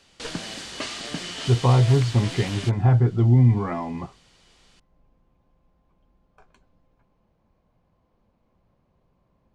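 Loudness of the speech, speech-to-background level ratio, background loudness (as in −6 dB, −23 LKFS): −20.5 LKFS, 12.5 dB, −33.0 LKFS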